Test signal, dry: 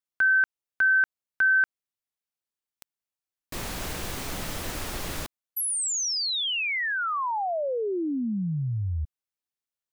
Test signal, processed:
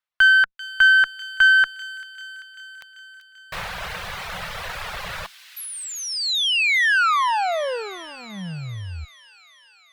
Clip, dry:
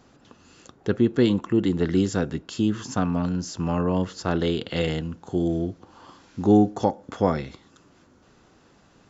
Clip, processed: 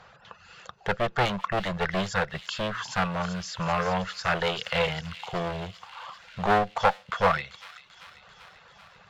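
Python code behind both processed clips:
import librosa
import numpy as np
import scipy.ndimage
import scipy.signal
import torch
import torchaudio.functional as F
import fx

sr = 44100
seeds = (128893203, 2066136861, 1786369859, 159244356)

p1 = fx.high_shelf(x, sr, hz=3400.0, db=-11.5)
p2 = fx.dereverb_blind(p1, sr, rt60_s=0.91)
p3 = fx.clip_asym(p2, sr, top_db=-29.5, bottom_db=-12.0)
p4 = fx.curve_eq(p3, sr, hz=(190.0, 270.0, 500.0, 1500.0, 4000.0, 6600.0), db=(0, -23, 4, 13, 12, 5))
y = p4 + fx.echo_wet_highpass(p4, sr, ms=390, feedback_pct=69, hz=3300.0, wet_db=-9, dry=0)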